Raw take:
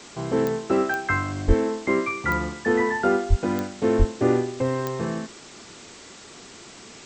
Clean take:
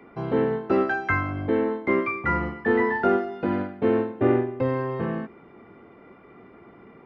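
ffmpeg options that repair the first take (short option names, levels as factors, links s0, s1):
-filter_complex "[0:a]adeclick=t=4,asplit=3[s0][s1][s2];[s0]afade=t=out:st=1.47:d=0.02[s3];[s1]highpass=f=140:w=0.5412,highpass=f=140:w=1.3066,afade=t=in:st=1.47:d=0.02,afade=t=out:st=1.59:d=0.02[s4];[s2]afade=t=in:st=1.59:d=0.02[s5];[s3][s4][s5]amix=inputs=3:normalize=0,asplit=3[s6][s7][s8];[s6]afade=t=out:st=3.29:d=0.02[s9];[s7]highpass=f=140:w=0.5412,highpass=f=140:w=1.3066,afade=t=in:st=3.29:d=0.02,afade=t=out:st=3.41:d=0.02[s10];[s8]afade=t=in:st=3.41:d=0.02[s11];[s9][s10][s11]amix=inputs=3:normalize=0,asplit=3[s12][s13][s14];[s12]afade=t=out:st=3.98:d=0.02[s15];[s13]highpass=f=140:w=0.5412,highpass=f=140:w=1.3066,afade=t=in:st=3.98:d=0.02,afade=t=out:st=4.1:d=0.02[s16];[s14]afade=t=in:st=4.1:d=0.02[s17];[s15][s16][s17]amix=inputs=3:normalize=0,afwtdn=0.0079"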